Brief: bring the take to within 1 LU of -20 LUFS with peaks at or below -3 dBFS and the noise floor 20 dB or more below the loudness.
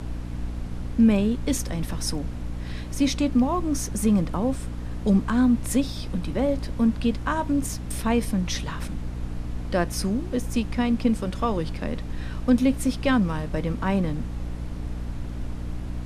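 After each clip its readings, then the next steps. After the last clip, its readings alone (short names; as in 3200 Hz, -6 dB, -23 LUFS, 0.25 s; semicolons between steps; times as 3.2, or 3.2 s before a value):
hum 60 Hz; harmonics up to 300 Hz; hum level -31 dBFS; noise floor -33 dBFS; noise floor target -46 dBFS; loudness -26.0 LUFS; peak -8.5 dBFS; loudness target -20.0 LUFS
-> notches 60/120/180/240/300 Hz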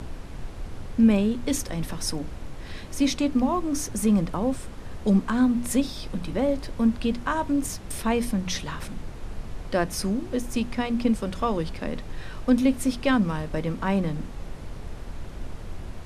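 hum none; noise floor -38 dBFS; noise floor target -46 dBFS
-> noise print and reduce 8 dB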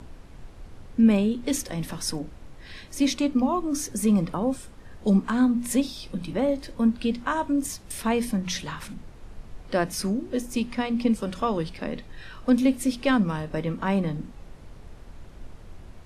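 noise floor -46 dBFS; loudness -26.0 LUFS; peak -9.5 dBFS; loudness target -20.0 LUFS
-> gain +6 dB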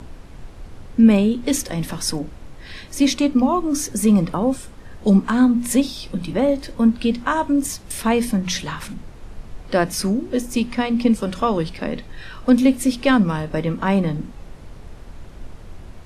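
loudness -20.0 LUFS; peak -3.5 dBFS; noise floor -40 dBFS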